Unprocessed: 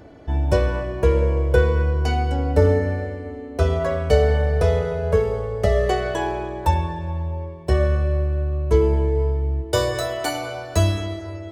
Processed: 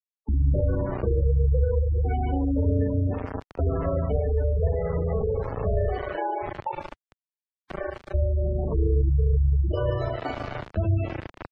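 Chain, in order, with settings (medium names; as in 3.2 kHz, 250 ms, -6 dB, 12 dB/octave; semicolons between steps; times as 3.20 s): treble shelf 4.7 kHz -5 dB; modulation noise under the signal 19 dB; peak limiter -13 dBFS, peak gain reduction 10 dB; 5.85–8.14 s: high-pass 440 Hz 12 dB/octave; AM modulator 27 Hz, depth 45%; feedback echo behind a high-pass 142 ms, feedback 49%, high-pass 1.6 kHz, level -3.5 dB; reverberation RT60 0.40 s, pre-delay 4 ms, DRR -2 dB; bit crusher 4-bit; spectral gate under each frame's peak -15 dB strong; tape spacing loss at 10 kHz 31 dB; three bands compressed up and down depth 40%; trim -2.5 dB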